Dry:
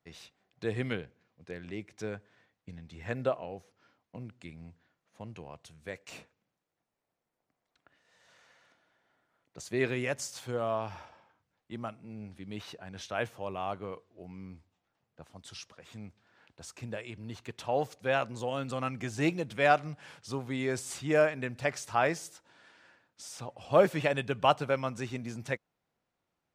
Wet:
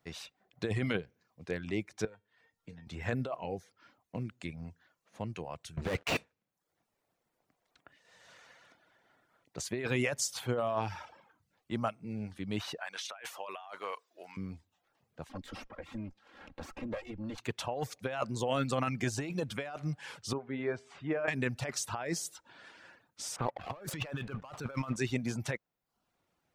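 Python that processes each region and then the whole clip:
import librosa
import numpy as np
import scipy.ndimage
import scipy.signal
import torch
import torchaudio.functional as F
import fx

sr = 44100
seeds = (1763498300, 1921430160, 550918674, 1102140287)

y = fx.chain(x, sr, fx.comb_fb(f0_hz=460.0, decay_s=0.26, harmonics='all', damping=0.0, mix_pct=80),
    fx.band_squash(depth_pct=70), at=(2.05, 2.87))
y = fx.chain(y, sr, fx.spacing_loss(db_at_10k=25),
    fx.leveller(passes=5), at=(5.77, 6.17))
y = fx.chain(y, sr, fx.highpass(hz=930.0, slope=12),
    fx.over_compress(threshold_db=-48.0, ratio=-1.0), at=(12.78, 14.37))
y = fx.chain(y, sr, fx.lower_of_two(delay_ms=3.7),
    fx.lowpass(hz=1400.0, slope=6),
    fx.band_squash(depth_pct=70), at=(15.29, 17.38))
y = fx.chain(y, sr, fx.lowpass(hz=2000.0, slope=12),
    fx.low_shelf(hz=92.0, db=-10.5),
    fx.comb_fb(f0_hz=81.0, decay_s=0.98, harmonics='all', damping=0.0, mix_pct=60), at=(20.33, 21.28))
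y = fx.chain(y, sr, fx.env_lowpass(base_hz=1500.0, full_db=-19.0),
    fx.peak_eq(hz=1200.0, db=7.5, octaves=0.69),
    fx.leveller(passes=2), at=(23.36, 24.96))
y = fx.dereverb_blind(y, sr, rt60_s=0.52)
y = fx.over_compress(y, sr, threshold_db=-35.0, ratio=-1.0)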